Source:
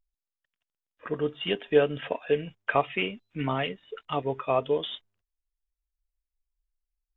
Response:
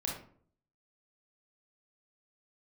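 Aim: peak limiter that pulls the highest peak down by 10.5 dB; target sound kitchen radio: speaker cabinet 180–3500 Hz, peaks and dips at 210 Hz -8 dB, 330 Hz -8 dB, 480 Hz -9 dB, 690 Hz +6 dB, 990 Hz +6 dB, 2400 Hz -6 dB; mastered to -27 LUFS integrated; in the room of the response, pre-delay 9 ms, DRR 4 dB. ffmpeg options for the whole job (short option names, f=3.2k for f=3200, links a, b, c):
-filter_complex "[0:a]alimiter=limit=-19.5dB:level=0:latency=1,asplit=2[a][b];[1:a]atrim=start_sample=2205,adelay=9[c];[b][c]afir=irnorm=-1:irlink=0,volume=-7dB[d];[a][d]amix=inputs=2:normalize=0,highpass=180,equalizer=f=210:t=q:w=4:g=-8,equalizer=f=330:t=q:w=4:g=-8,equalizer=f=480:t=q:w=4:g=-9,equalizer=f=690:t=q:w=4:g=6,equalizer=f=990:t=q:w=4:g=6,equalizer=f=2.4k:t=q:w=4:g=-6,lowpass=f=3.5k:w=0.5412,lowpass=f=3.5k:w=1.3066,volume=5.5dB"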